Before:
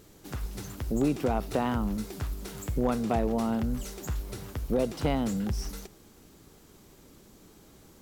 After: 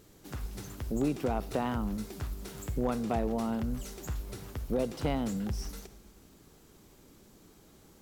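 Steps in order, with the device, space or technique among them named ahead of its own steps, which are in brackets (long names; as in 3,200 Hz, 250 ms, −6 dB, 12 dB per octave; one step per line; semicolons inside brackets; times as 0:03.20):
compressed reverb return (on a send at −10 dB: convolution reverb RT60 0.95 s, pre-delay 44 ms + downward compressor, threshold −36 dBFS, peak gain reduction 15.5 dB)
on the sum: level −3.5 dB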